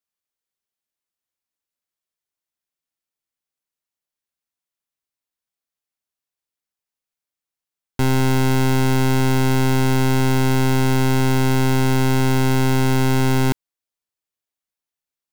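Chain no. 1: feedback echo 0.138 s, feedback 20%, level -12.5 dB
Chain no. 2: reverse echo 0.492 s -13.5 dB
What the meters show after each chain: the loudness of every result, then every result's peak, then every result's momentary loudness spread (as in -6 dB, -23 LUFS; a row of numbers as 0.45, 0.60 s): -17.5, -18.5 LUFS; -14.0, -14.5 dBFS; 2, 5 LU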